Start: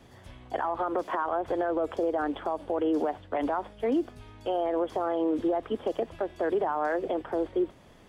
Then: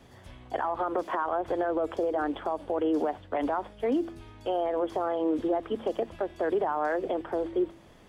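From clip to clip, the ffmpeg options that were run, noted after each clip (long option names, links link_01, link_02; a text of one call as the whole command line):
ffmpeg -i in.wav -af "bandreject=frequency=111.2:width_type=h:width=4,bandreject=frequency=222.4:width_type=h:width=4,bandreject=frequency=333.6:width_type=h:width=4" out.wav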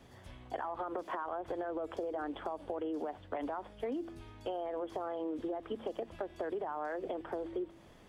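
ffmpeg -i in.wav -af "acompressor=threshold=-31dB:ratio=6,volume=-3.5dB" out.wav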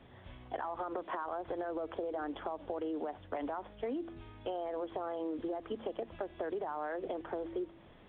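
ffmpeg -i in.wav -ar 8000 -c:a pcm_mulaw out.wav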